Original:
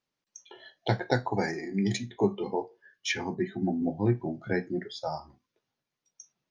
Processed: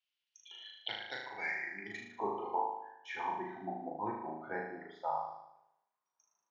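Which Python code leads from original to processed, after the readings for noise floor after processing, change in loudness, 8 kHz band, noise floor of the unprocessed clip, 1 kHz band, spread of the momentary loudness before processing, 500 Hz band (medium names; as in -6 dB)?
under -85 dBFS, -9.0 dB, under -20 dB, under -85 dBFS, -0.5 dB, 9 LU, -11.5 dB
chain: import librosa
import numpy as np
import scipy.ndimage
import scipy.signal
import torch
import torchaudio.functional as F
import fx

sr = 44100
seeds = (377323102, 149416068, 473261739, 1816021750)

y = fx.room_flutter(x, sr, wall_m=6.5, rt60_s=0.81)
y = fx.dynamic_eq(y, sr, hz=4800.0, q=1.4, threshold_db=-51.0, ratio=4.0, max_db=-7)
y = fx.filter_sweep_bandpass(y, sr, from_hz=3000.0, to_hz=1000.0, start_s=1.21, end_s=2.34, q=4.2)
y = y * 10.0 ** (4.5 / 20.0)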